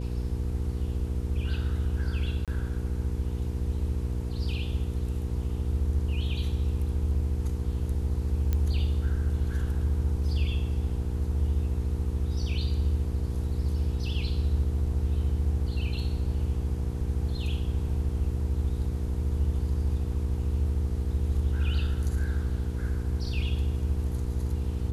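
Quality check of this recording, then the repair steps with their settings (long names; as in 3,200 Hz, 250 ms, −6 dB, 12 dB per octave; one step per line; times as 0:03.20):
mains hum 60 Hz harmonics 8 −32 dBFS
0:02.45–0:02.48: drop-out 27 ms
0:08.53: click −16 dBFS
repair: click removal
hum removal 60 Hz, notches 8
repair the gap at 0:02.45, 27 ms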